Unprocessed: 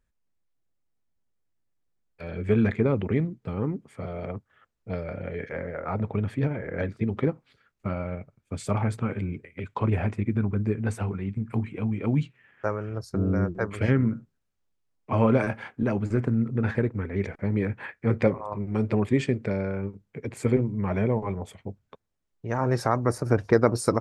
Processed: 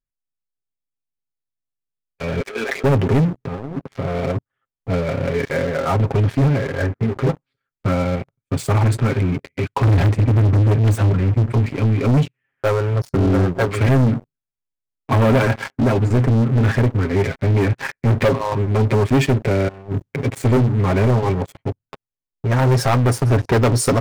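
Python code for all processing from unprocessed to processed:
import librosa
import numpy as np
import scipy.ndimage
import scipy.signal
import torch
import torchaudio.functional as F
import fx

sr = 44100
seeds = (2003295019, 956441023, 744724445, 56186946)

y = fx.chain(x, sr, fx.highpass(hz=450.0, slope=24),
    fx.over_compress(threshold_db=-37.0, ratio=-1.0), at=(2.4, 2.84))
y = fx.chain(y, sr, fx.lowpass(hz=3000.0, slope=12),
    fx.over_compress(threshold_db=-38.0, ratio=-1.0), at=(3.38, 4.16))
y = fx.chain(y, sr, fx.cheby1_lowpass(hz=1900.0, order=3),
    fx.dynamic_eq(hz=250.0, q=2.5, threshold_db=-39.0, ratio=4.0, max_db=-5),
    fx.detune_double(cents=11), at=(6.67, 7.29))
y = fx.chain(y, sr, fx.self_delay(depth_ms=0.37),
    fx.highpass(hz=60.0, slope=24),
    fx.low_shelf(hz=110.0, db=11.0), at=(9.83, 11.54))
y = fx.chain(y, sr, fx.highpass(hz=43.0, slope=12),
    fx.low_shelf(hz=230.0, db=7.0),
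    fx.over_compress(threshold_db=-39.0, ratio=-1.0), at=(19.68, 20.24))
y = fx.low_shelf(y, sr, hz=230.0, db=3.0)
y = y + 0.64 * np.pad(y, (int(7.4 * sr / 1000.0), 0))[:len(y)]
y = fx.leveller(y, sr, passes=5)
y = y * librosa.db_to_amplitude(-7.5)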